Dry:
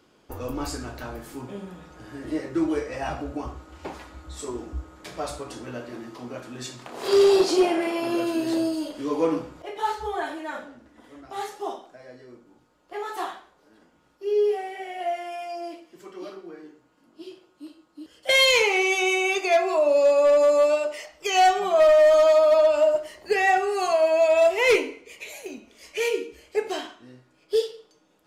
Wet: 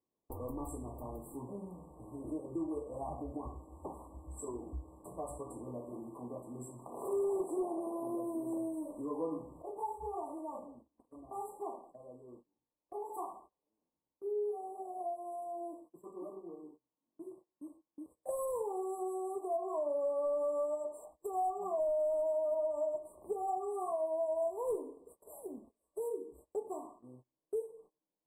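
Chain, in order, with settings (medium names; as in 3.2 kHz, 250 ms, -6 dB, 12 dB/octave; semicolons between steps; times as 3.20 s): brick-wall FIR band-stop 1.2–7.5 kHz; gate -49 dBFS, range -23 dB; compression 2:1, threshold -33 dBFS, peak gain reduction 10.5 dB; trim -6.5 dB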